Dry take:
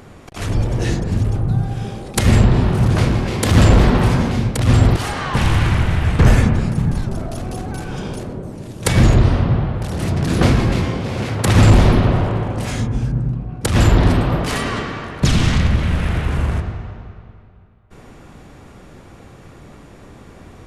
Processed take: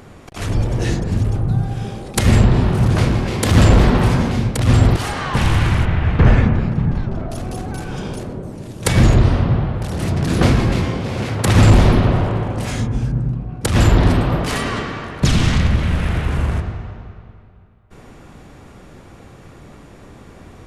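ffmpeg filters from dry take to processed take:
-filter_complex "[0:a]asettb=1/sr,asplit=3[s0][s1][s2];[s0]atrim=end=5.854[s3];[s1]atrim=start=5.85:end=7.3,asetpts=PTS-STARTPTS,afade=t=in:d=0.004:c=qsin,afade=t=out:st=1.446:d=0.004:c=qsin,lowpass=3000[s4];[s2]atrim=start=7.296[s5];[s3][s4]acrossfade=d=0.004:c1=hsin:c2=qsin[s6];[s6][s5]acrossfade=d=0.004:c1=qsin:c2=hsin"

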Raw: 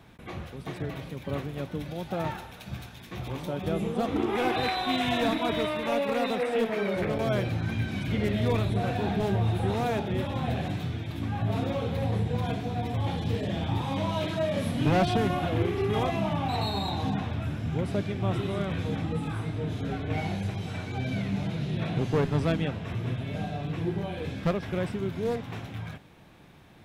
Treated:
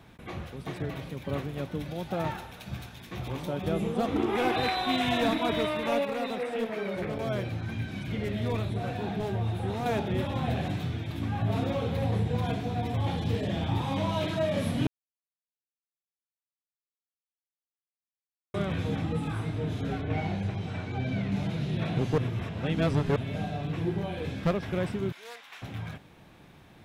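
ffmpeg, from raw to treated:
-filter_complex "[0:a]asettb=1/sr,asplit=3[s0][s1][s2];[s0]atrim=end=6.054[s3];[s1]atrim=start=6.05:end=9.86,asetpts=PTS-STARTPTS,afade=t=in:d=0.004:c=qsin,afade=t=out:st=3.806:d=0.004:c=qsin,flanger=delay=5.4:depth=4.4:regen=-76:speed=1:shape=triangular[s4];[s2]atrim=start=9.856[s5];[s3][s4]acrossfade=d=0.004:c1=hsin:c2=qsin[s6];[s6][s5]acrossfade=d=0.004:c1=qsin:c2=hsin,asettb=1/sr,asplit=3[s7][s8][s9];[s7]atrim=end=20.014[s10];[s8]atrim=start=20.01:end=21.32,asetpts=PTS-STARTPTS,afade=t=in:d=0.004:c=qsin,afade=t=out:st=1.306:d=0.004:c=qsin,aemphasis=mode=reproduction:type=50kf[s11];[s9]atrim=start=21.316[s12];[s10][s11]acrossfade=d=0.004:c1=hsin:c2=qsin[s13];[s13][s12]acrossfade=d=0.004:c1=qsin:c2=hsin,asettb=1/sr,asplit=3[s14][s15][s16];[s14]atrim=end=25.124[s17];[s15]atrim=start=25.12:end=25.62,asetpts=PTS-STARTPTS,afade=t=in:d=0.004:c=qsin,afade=t=out:st=0.496:d=0.004:c=qsin,highpass=1400[s18];[s16]atrim=start=25.616[s19];[s17][s18]acrossfade=d=0.004:c1=hsin:c2=qsin[s20];[s20][s19]acrossfade=d=0.004:c1=qsin:c2=hsin,asplit=5[s21][s22][s23][s24][s25];[s21]atrim=end=14.87,asetpts=PTS-STARTPTS,afade=t=out:st=14.866:d=0.004:c=hsin[s26];[s22]atrim=start=14.87:end=18.54,asetpts=PTS-STARTPTS,volume=0[s27];[s23]atrim=start=18.54:end=22.182,asetpts=PTS-STARTPTS,afade=t=in:d=0.004:c=hsin[s28];[s24]atrim=start=22.178:end=23.162,asetpts=PTS-STARTPTS,areverse[s29];[s25]atrim=start=23.158[s30];[s26][s27][s28]concat=n=3:v=0:a=1[s31];[s31][s29]acrossfade=d=0.004:c1=hsin:c2=hsin[s32];[s32][s30]acrossfade=d=0.004:c1=hsin:c2=hsin"

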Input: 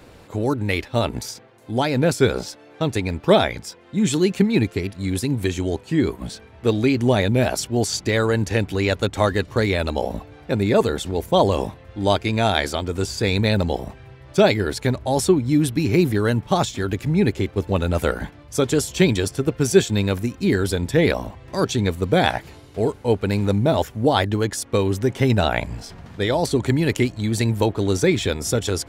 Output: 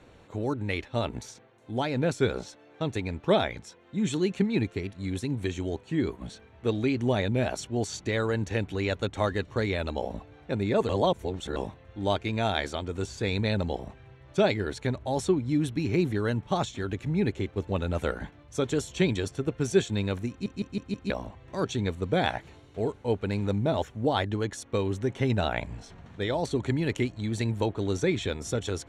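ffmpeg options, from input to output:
-filter_complex "[0:a]asplit=8[s0][s1][s2][s3][s4][s5][s6][s7];[s0]atrim=end=10.892[s8];[s1]atrim=start=10.888:end=11.562,asetpts=PTS-STARTPTS,areverse[s9];[s2]atrim=start=11.558:end=20.462[s10];[s3]atrim=start=20.298:end=20.462[s11];[s4]atrim=start=20.298:end=20.462[s12];[s5]atrim=start=20.298:end=20.462[s13];[s6]atrim=start=20.298:end=20.462[s14];[s7]atrim=start=21.098[s15];[s8][s9]acrossfade=d=0.004:c1=hsin:c2=hsin[s16];[s16][s10]acrossfade=d=0.004:c1=hsin:c2=hsin[s17];[s17][s11]acrossfade=d=0.004:c1=hsin:c2=hsin[s18];[s18][s12]acrossfade=d=0.004:c1=hsin:c2=hsin[s19];[s19][s13]acrossfade=d=0.004:c1=hsin:c2=hsin[s20];[s20][s14]acrossfade=d=0.004:c1=hsin:c2=hsin[s21];[s21][s15]acrossfade=d=0.004:c1=hsin:c2=hsin,lowpass=7000,bandreject=f=4900:w=5.2,volume=0.398"

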